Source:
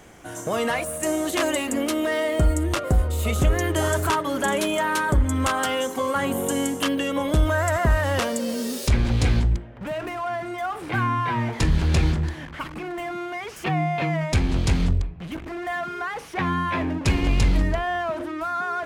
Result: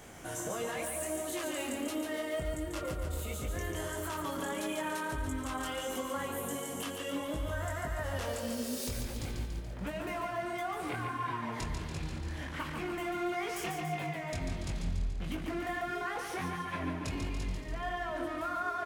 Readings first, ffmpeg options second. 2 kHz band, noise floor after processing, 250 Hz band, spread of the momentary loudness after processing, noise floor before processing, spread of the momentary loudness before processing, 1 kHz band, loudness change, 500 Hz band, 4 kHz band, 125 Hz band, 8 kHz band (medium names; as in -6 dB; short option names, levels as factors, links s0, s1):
-11.5 dB, -40 dBFS, -12.0 dB, 4 LU, -38 dBFS, 9 LU, -11.0 dB, -12.5 dB, -11.5 dB, -11.5 dB, -16.0 dB, -9.5 dB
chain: -af "highshelf=f=6800:g=6,alimiter=limit=0.1:level=0:latency=1,acompressor=threshold=0.0251:ratio=6,flanger=delay=19.5:depth=4.5:speed=1.5,aecho=1:1:143|286|429|572|715|858|1001|1144:0.531|0.308|0.179|0.104|0.0601|0.0348|0.0202|0.0117"